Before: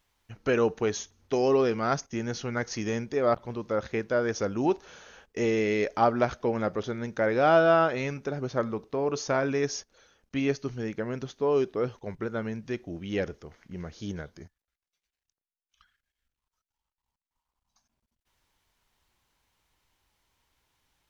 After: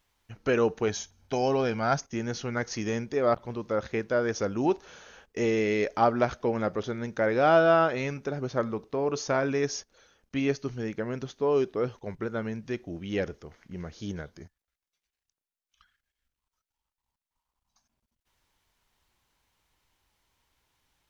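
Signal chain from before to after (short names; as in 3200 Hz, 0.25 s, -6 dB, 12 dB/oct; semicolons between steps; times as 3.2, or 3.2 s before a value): 0.88–1.98 comb 1.3 ms, depth 46%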